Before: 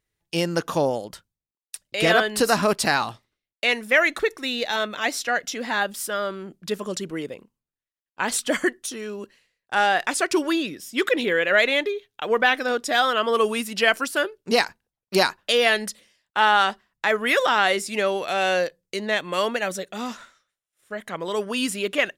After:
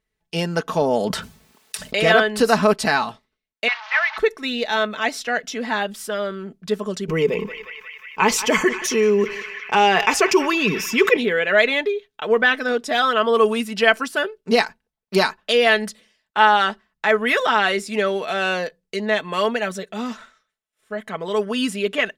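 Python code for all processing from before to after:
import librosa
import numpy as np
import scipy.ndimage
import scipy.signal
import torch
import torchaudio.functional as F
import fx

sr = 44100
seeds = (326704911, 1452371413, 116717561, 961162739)

y = fx.chain(x, sr, fx.highpass(hz=74.0, slope=12),
    fx.env_flatten(amount_pct=70), at=(0.81, 2.0))
y = fx.chain(y, sr, fx.delta_mod(bps=32000, step_db=-22.0),
    fx.steep_highpass(hz=780.0, slope=48),
    fx.air_absorb(metres=200.0), at=(3.68, 4.18))
y = fx.chain(y, sr, fx.ripple_eq(per_octave=0.78, db=10),
    fx.echo_banded(ms=179, feedback_pct=75, hz=2100.0, wet_db=-18.0),
    fx.env_flatten(amount_pct=50), at=(7.08, 11.17))
y = fx.high_shelf(y, sr, hz=5700.0, db=-9.5)
y = y + 0.55 * np.pad(y, (int(4.6 * sr / 1000.0), 0))[:len(y)]
y = F.gain(torch.from_numpy(y), 1.5).numpy()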